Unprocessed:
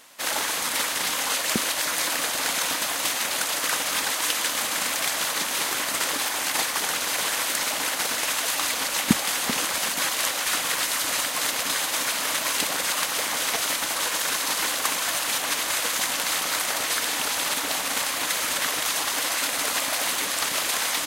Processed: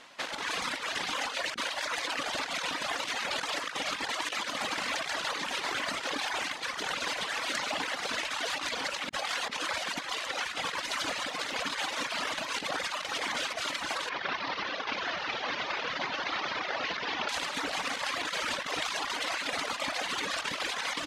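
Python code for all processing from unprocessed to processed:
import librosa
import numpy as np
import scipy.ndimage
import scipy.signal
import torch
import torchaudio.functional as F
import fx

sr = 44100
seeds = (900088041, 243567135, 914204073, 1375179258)

y = fx.chain(x, sr, fx.cvsd(bps=32000),
    fx.highpass(hz=260.0, slope=6), at=(14.09, 17.29))
y = scipy.signal.sosfilt(scipy.signal.butter(2, 4100.0, 'lowpass', fs=sr, output='sos'), y)
y = fx.dereverb_blind(y, sr, rt60_s=1.9)
y = fx.over_compress(y, sr, threshold_db=-33.0, ratio=-0.5)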